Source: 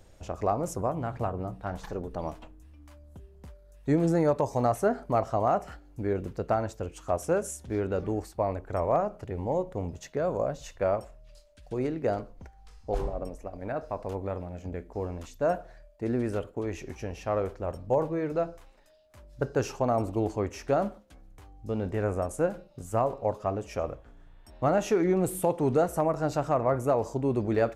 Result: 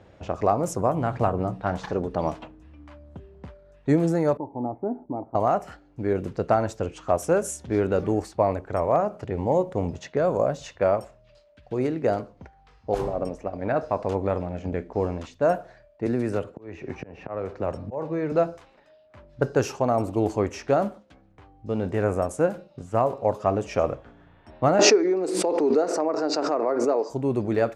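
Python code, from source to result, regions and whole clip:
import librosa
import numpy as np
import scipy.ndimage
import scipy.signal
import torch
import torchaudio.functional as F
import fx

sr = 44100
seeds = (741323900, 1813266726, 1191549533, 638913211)

y = fx.chain(x, sr, fx.formant_cascade(vowel='u'),
    fx.peak_eq(hz=1600.0, db=9.5, octaves=1.3), at=(4.37, 5.35))
y = fx.chain(y, sr, fx.auto_swell(attack_ms=756.0),
    fx.notch(hz=3200.0, q=11.0),
    fx.band_squash(depth_pct=70), at=(16.06, 18.32))
y = fx.chain(y, sr, fx.cabinet(low_hz=270.0, low_slope=24, high_hz=6200.0, hz=(290.0, 420.0, 3200.0, 4700.0), db=(5, 7, -8, 10)),
    fx.pre_swell(db_per_s=34.0), at=(24.79, 27.1))
y = fx.env_lowpass(y, sr, base_hz=2500.0, full_db=-25.0)
y = scipy.signal.sosfilt(scipy.signal.butter(2, 93.0, 'highpass', fs=sr, output='sos'), y)
y = fx.rider(y, sr, range_db=5, speed_s=0.5)
y = y * 10.0 ** (3.5 / 20.0)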